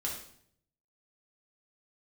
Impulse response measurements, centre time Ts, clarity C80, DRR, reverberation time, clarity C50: 34 ms, 8.5 dB, −3.5 dB, 0.65 s, 4.5 dB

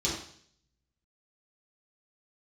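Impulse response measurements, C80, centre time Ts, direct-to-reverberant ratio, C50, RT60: 7.0 dB, 40 ms, −7.5 dB, 3.5 dB, 0.60 s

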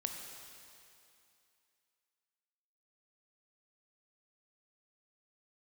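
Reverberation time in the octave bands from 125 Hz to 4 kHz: 2.3, 2.5, 2.5, 2.7, 2.7, 2.6 seconds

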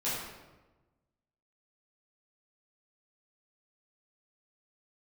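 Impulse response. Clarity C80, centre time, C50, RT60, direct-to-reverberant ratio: 2.5 dB, 79 ms, −0.5 dB, 1.2 s, −11.0 dB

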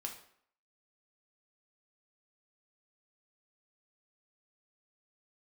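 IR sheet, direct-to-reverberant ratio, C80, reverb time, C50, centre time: 1.5 dB, 12.0 dB, 0.60 s, 8.5 dB, 20 ms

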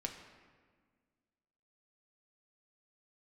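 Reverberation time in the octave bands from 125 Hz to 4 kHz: 2.0, 2.2, 1.7, 1.6, 1.4, 1.0 seconds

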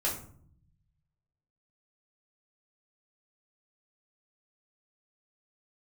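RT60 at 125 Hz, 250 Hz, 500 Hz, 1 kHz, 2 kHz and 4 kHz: 1.7, 1.1, 0.65, 0.50, 0.40, 0.30 seconds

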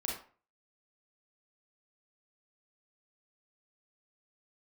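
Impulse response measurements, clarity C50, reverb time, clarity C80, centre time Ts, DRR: 2.5 dB, 0.40 s, 9.0 dB, 39 ms, −2.5 dB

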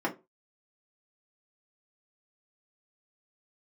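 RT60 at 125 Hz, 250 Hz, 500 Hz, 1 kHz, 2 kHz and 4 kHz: 0.30, 0.25, 0.30, 0.20, 0.20, 0.15 seconds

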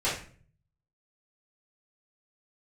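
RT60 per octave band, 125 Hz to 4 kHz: 0.95, 0.70, 0.50, 0.40, 0.40, 0.35 seconds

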